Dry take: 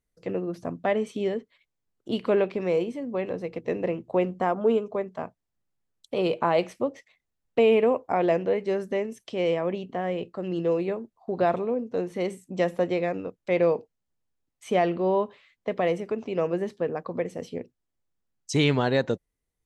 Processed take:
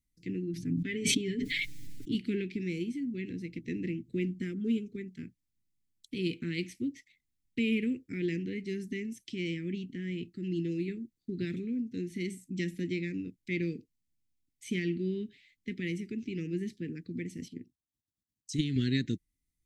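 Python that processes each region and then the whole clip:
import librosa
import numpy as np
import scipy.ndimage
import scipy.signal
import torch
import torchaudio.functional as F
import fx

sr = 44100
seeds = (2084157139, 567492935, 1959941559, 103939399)

y = fx.chain(x, sr, fx.high_shelf(hz=4200.0, db=-7.0),
    fx.comb(ms=7.0, depth=0.64),
    fx.sustainer(db_per_s=21.0), at=(0.53, 2.15))
y = fx.chain(y, sr, fx.highpass(hz=46.0, slope=12),
    fx.peak_eq(hz=2300.0, db=-11.5, octaves=0.23),
    fx.level_steps(step_db=10), at=(17.48, 18.76))
y = scipy.signal.sosfilt(scipy.signal.ellip(3, 1.0, 50, [310.0, 2100.0], 'bandstop', fs=sr, output='sos'), y)
y = fx.peak_eq(y, sr, hz=2700.0, db=-4.5, octaves=0.55)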